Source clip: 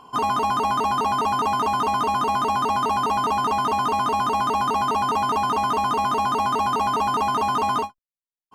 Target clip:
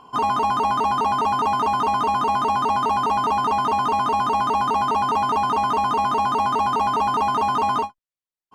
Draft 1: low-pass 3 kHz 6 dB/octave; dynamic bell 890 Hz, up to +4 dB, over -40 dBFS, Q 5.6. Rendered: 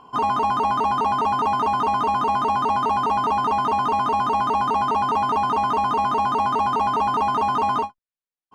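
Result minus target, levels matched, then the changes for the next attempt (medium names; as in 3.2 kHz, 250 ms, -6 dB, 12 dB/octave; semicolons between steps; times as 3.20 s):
8 kHz band -4.0 dB
change: low-pass 6.1 kHz 6 dB/octave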